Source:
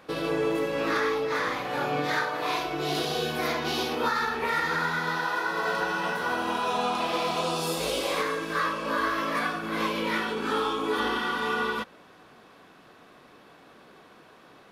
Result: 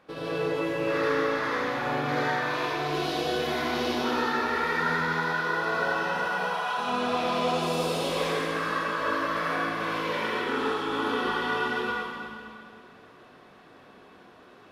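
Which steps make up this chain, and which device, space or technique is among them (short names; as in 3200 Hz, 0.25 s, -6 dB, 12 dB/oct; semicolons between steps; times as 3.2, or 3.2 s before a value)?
6.15–6.77 HPF 380 Hz -> 930 Hz 24 dB/oct; swimming-pool hall (reverb RT60 2.3 s, pre-delay 66 ms, DRR -7 dB; high shelf 5600 Hz -7.5 dB); gain -7 dB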